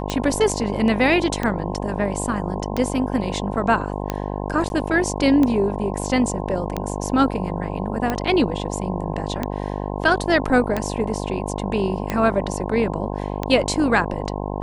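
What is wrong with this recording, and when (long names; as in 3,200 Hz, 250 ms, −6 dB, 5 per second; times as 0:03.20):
mains buzz 50 Hz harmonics 21 −27 dBFS
scratch tick 45 rpm −9 dBFS
0:04.69–0:04.70: drop-out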